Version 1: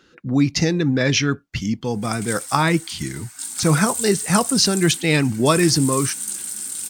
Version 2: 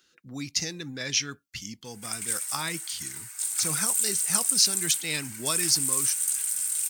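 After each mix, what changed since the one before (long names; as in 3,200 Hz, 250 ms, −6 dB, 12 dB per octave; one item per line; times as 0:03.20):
background: add flat-topped bell 1,200 Hz +10.5 dB 2.7 octaves
master: add first-order pre-emphasis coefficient 0.9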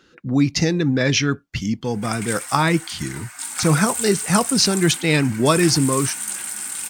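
master: remove first-order pre-emphasis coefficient 0.9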